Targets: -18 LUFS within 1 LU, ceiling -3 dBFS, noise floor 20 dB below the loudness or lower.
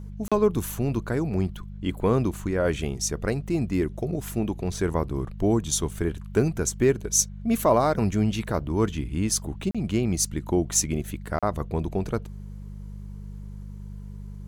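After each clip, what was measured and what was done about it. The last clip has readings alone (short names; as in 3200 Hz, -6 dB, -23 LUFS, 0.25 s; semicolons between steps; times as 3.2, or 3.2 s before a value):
dropouts 3; longest dropout 36 ms; hum 50 Hz; harmonics up to 200 Hz; hum level -36 dBFS; loudness -26.0 LUFS; peak -7.5 dBFS; loudness target -18.0 LUFS
-> interpolate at 0.28/9.71/11.39, 36 ms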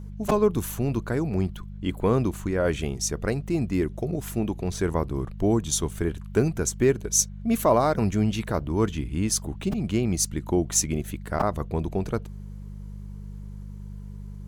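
dropouts 0; hum 50 Hz; harmonics up to 200 Hz; hum level -36 dBFS
-> de-hum 50 Hz, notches 4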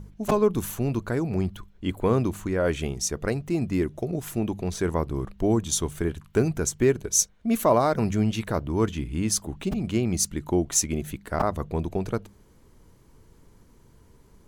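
hum none; loudness -26.0 LUFS; peak -7.5 dBFS; loudness target -18.0 LUFS
-> gain +8 dB; limiter -3 dBFS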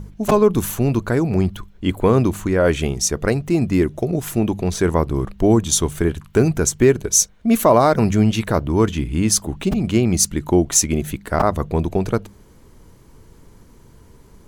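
loudness -18.5 LUFS; peak -3.0 dBFS; noise floor -48 dBFS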